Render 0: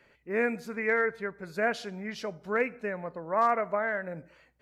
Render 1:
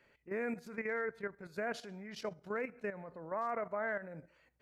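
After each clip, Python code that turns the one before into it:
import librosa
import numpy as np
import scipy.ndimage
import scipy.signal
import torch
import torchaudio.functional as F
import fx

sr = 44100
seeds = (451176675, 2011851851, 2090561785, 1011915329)

y = fx.dynamic_eq(x, sr, hz=3100.0, q=0.9, threshold_db=-41.0, ratio=4.0, max_db=-4)
y = fx.level_steps(y, sr, step_db=11)
y = F.gain(torch.from_numpy(y), -3.0).numpy()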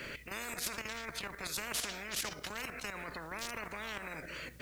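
y = fx.peak_eq(x, sr, hz=820.0, db=-14.0, octaves=0.75)
y = fx.spectral_comp(y, sr, ratio=10.0)
y = F.gain(torch.from_numpy(y), 6.0).numpy()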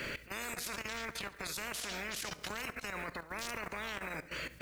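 y = fx.level_steps(x, sr, step_db=15)
y = fx.echo_feedback(y, sr, ms=70, feedback_pct=56, wet_db=-19.5)
y = F.gain(torch.from_numpy(y), 4.5).numpy()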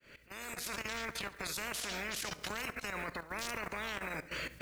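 y = fx.fade_in_head(x, sr, length_s=0.76)
y = F.gain(torch.from_numpy(y), 1.0).numpy()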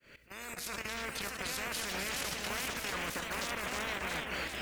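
y = fx.echo_pitch(x, sr, ms=693, semitones=2, count=3, db_per_echo=-3.0)
y = y + 10.0 ** (-10.0 / 20.0) * np.pad(y, (int(265 * sr / 1000.0), 0))[:len(y)]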